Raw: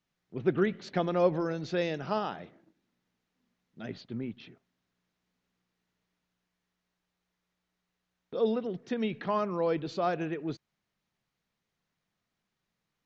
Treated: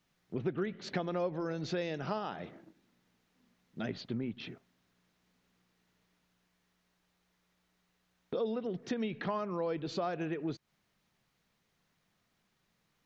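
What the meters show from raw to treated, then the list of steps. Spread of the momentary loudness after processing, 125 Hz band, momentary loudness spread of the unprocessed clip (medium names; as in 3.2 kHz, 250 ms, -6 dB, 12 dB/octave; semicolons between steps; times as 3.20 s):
11 LU, -3.0 dB, 15 LU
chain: compression 4:1, threshold -41 dBFS, peak gain reduction 18 dB; trim +7 dB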